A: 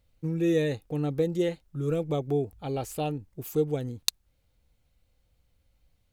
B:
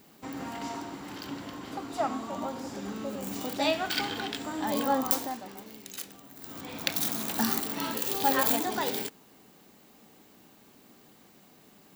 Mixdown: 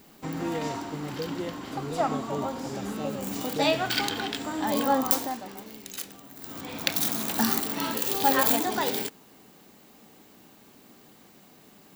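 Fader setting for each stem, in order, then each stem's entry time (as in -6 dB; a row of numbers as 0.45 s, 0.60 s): -8.0 dB, +3.0 dB; 0.00 s, 0.00 s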